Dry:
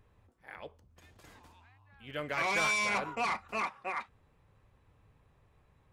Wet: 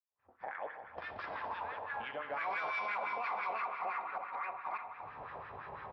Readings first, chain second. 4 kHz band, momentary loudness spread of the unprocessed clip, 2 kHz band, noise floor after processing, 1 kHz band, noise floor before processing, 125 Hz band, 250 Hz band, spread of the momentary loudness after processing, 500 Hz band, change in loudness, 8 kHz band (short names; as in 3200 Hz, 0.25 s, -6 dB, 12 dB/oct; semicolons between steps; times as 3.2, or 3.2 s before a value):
-12.5 dB, 21 LU, -5.0 dB, -73 dBFS, +0.5 dB, -69 dBFS, n/a, -11.5 dB, 11 LU, -3.0 dB, -7.5 dB, under -30 dB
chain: reverse delay 0.597 s, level -11 dB; recorder AGC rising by 58 dB/s; steep low-pass 5400 Hz 96 dB/oct; in parallel at -0.5 dB: compressor, threshold -44 dBFS, peak gain reduction 16 dB; on the sum: expander -40 dBFS; on a send: echo 0.318 s -11.5 dB; on the sum: spring tank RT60 2.2 s, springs 58 ms, chirp 35 ms, DRR 4.5 dB; LFO band-pass sine 5.9 Hz 710–1600 Hz; added harmonics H 6 -43 dB, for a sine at -22 dBFS; limiter -30 dBFS, peak gain reduction 7 dB; three-band expander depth 40%; gain +1 dB